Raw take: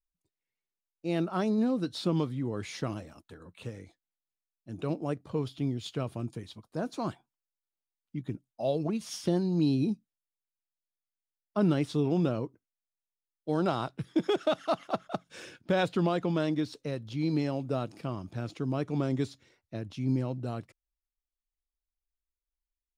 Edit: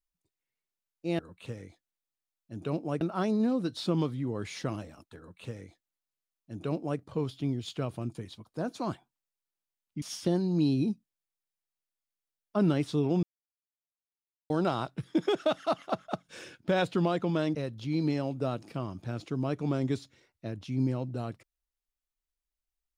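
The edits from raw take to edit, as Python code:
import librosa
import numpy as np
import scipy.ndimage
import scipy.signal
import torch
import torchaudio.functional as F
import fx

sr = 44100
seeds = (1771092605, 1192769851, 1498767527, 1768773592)

y = fx.edit(x, sr, fx.duplicate(start_s=3.36, length_s=1.82, to_s=1.19),
    fx.cut(start_s=8.2, length_s=0.83),
    fx.silence(start_s=12.24, length_s=1.27),
    fx.cut(start_s=16.56, length_s=0.28), tone=tone)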